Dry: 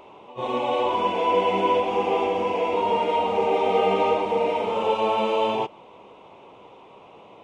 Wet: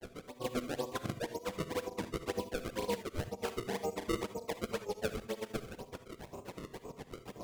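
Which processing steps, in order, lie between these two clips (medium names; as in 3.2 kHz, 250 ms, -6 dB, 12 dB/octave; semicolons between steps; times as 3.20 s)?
tilt EQ -4.5 dB/octave; band-stop 850 Hz, Q 12; reverse; compression 5:1, threshold -33 dBFS, peak gain reduction 18.5 dB; reverse; granulator 89 ms, grains 7.6 per s, spray 11 ms, pitch spread up and down by 0 st; decimation with a swept rate 30×, swing 160% 2 Hz; granulator, spray 24 ms, pitch spread up and down by 0 st; on a send at -11 dB: reverberation, pre-delay 3 ms; on the sum: warped record 33 1/3 rpm, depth 100 cents; trim +2.5 dB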